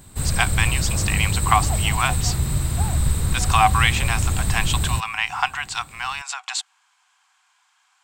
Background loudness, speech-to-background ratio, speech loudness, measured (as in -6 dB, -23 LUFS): -23.0 LUFS, -0.5 dB, -23.5 LUFS